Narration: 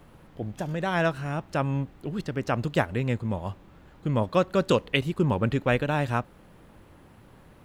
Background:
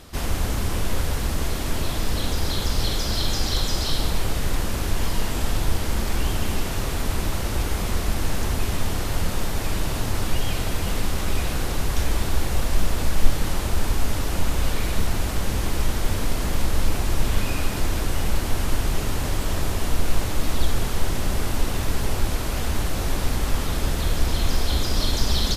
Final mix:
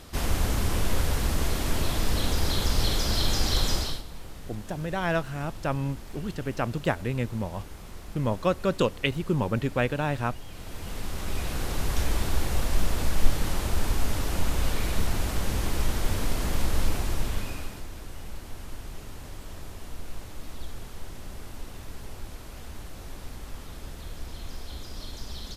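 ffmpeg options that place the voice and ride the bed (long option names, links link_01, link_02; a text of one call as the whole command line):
ffmpeg -i stem1.wav -i stem2.wav -filter_complex "[0:a]adelay=4100,volume=-2dB[link_01];[1:a]volume=13.5dB,afade=type=out:start_time=3.72:duration=0.31:silence=0.141254,afade=type=in:start_time=10.5:duration=1.41:silence=0.177828,afade=type=out:start_time=16.83:duration=1.02:silence=0.223872[link_02];[link_01][link_02]amix=inputs=2:normalize=0" out.wav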